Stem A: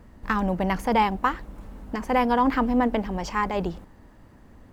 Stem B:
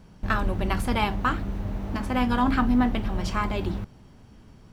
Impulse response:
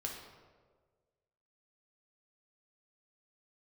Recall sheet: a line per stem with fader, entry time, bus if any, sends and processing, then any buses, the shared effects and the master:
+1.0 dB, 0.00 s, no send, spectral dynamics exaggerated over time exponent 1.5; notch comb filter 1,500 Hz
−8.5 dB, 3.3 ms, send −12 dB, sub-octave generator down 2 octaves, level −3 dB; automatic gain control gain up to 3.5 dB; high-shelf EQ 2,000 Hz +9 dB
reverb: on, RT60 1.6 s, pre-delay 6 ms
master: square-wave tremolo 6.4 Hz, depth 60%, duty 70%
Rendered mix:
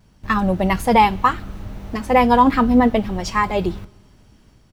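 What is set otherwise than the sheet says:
stem A +1.0 dB → +9.5 dB
master: missing square-wave tremolo 6.4 Hz, depth 60%, duty 70%

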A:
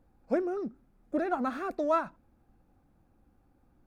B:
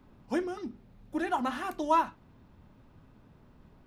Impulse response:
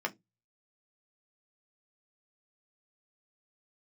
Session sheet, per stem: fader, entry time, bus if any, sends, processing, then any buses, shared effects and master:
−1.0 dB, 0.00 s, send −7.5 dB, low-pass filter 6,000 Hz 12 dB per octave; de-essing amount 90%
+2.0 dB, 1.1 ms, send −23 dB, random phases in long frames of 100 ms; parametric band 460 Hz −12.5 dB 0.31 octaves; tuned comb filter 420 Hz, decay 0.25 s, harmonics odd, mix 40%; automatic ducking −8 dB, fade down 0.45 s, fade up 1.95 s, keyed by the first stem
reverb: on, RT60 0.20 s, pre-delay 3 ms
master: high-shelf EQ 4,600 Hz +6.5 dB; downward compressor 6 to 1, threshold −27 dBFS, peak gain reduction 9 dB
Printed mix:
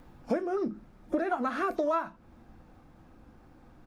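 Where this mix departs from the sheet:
stem A −1.0 dB → +8.5 dB
stem B: missing tuned comb filter 420 Hz, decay 0.25 s, harmonics odd, mix 40%

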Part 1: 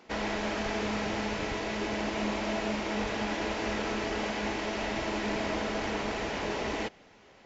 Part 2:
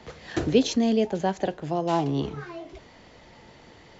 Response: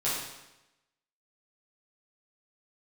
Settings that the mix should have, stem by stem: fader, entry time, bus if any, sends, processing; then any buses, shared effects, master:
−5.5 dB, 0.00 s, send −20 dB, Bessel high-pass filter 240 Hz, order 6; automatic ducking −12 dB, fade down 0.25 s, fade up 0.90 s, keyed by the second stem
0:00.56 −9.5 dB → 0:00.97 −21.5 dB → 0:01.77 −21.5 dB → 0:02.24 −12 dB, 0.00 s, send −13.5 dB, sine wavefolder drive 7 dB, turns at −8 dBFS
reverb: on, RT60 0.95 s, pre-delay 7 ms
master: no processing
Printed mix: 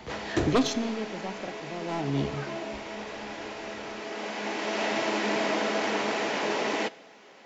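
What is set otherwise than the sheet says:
stem 1 −5.5 dB → +5.0 dB
reverb return −7.5 dB

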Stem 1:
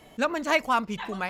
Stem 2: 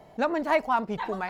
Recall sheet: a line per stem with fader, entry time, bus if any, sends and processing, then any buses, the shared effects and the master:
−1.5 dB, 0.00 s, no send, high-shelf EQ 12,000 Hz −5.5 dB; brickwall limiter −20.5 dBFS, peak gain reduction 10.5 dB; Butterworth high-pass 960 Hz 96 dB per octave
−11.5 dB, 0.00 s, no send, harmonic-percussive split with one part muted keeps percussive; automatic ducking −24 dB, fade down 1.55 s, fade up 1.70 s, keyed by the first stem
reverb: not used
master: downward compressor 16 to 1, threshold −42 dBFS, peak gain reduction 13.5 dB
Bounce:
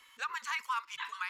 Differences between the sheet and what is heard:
stem 2 −11.5 dB → −20.0 dB
master: missing downward compressor 16 to 1, threshold −42 dBFS, peak gain reduction 13.5 dB

